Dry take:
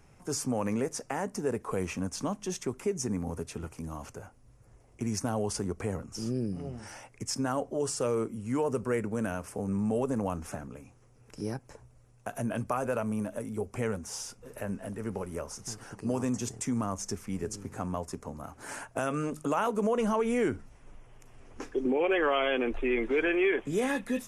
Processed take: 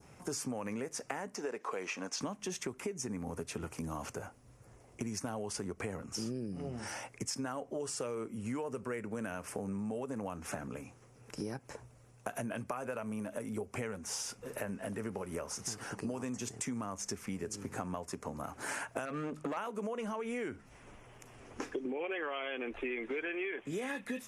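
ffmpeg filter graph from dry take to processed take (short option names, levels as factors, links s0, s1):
-filter_complex "[0:a]asettb=1/sr,asplit=3[s0][s1][s2];[s0]atrim=end=1.354[s3];[s1]atrim=start=1.35:end=2.21,asetpts=PTS-STARTPTS,afade=t=in:d=0.004:c=qsin,afade=t=out:st=0.856:d=0.004:c=qsin,highpass=370,highshelf=f=7600:t=q:w=1.5:g=-8[s4];[s2]atrim=start=2.206[s5];[s3][s4]acrossfade=d=0.004:c1=hsin:c2=qsin[s6];[s6][s5]acrossfade=d=0.004:c1=qsin:c2=hsin,asettb=1/sr,asplit=3[s7][s8][s9];[s7]atrim=end=19.054[s10];[s8]atrim=start=19.05:end=19.57,asetpts=PTS-STARTPTS,afade=t=in:d=0.004:c=qsin,afade=t=out:st=0.516:d=0.004:c=qsin,aemphasis=mode=reproduction:type=75kf,aeval=exprs='clip(val(0),-1,0.0376)':c=same[s11];[s9]atrim=start=19.566[s12];[s10][s11]acrossfade=d=0.004:c1=hsin:c2=qsin[s13];[s13][s12]acrossfade=d=0.004:c1=qsin:c2=hsin,highpass=f=130:p=1,adynamicequalizer=threshold=0.00398:dfrequency=2200:dqfactor=1:tfrequency=2200:tqfactor=1:attack=5:release=100:ratio=0.375:range=2.5:mode=boostabove:tftype=bell,acompressor=threshold=0.0112:ratio=10,volume=1.58"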